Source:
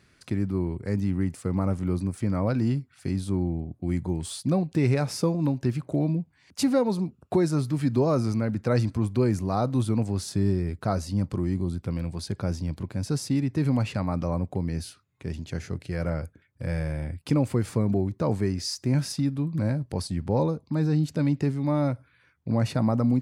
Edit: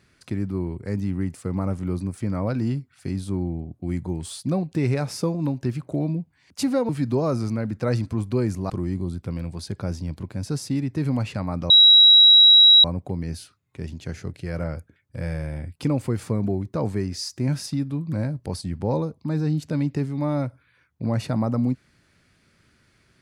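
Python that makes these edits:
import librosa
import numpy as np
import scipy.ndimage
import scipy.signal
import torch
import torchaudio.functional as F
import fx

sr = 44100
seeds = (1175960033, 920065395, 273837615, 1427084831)

y = fx.edit(x, sr, fx.cut(start_s=6.89, length_s=0.84),
    fx.cut(start_s=9.54, length_s=1.76),
    fx.insert_tone(at_s=14.3, length_s=1.14, hz=3870.0, db=-8.5), tone=tone)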